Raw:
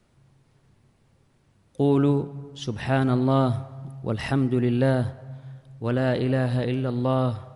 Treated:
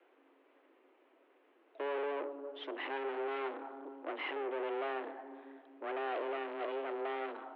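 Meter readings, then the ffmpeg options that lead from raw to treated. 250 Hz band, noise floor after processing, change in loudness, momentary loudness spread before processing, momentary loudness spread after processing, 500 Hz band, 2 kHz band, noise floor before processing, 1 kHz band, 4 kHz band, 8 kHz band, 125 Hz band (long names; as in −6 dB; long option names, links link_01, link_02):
−23.0 dB, −69 dBFS, −15.0 dB, 14 LU, 9 LU, −11.5 dB, −7.5 dB, −63 dBFS, −8.0 dB, −10.5 dB, can't be measured, below −40 dB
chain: -af "aeval=exprs='(tanh(63.1*val(0)+0.4)-tanh(0.4))/63.1':channel_layout=same,highpass=frequency=200:width_type=q:width=0.5412,highpass=frequency=200:width_type=q:width=1.307,lowpass=frequency=2900:width_type=q:width=0.5176,lowpass=frequency=2900:width_type=q:width=0.7071,lowpass=frequency=2900:width_type=q:width=1.932,afreqshift=140,volume=1.5dB"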